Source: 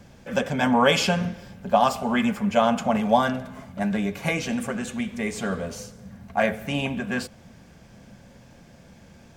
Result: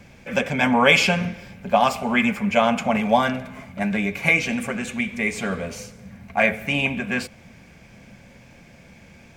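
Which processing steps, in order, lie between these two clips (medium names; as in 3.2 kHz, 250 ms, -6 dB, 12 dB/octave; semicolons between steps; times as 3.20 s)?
peaking EQ 2.3 kHz +12 dB 0.42 oct; trim +1 dB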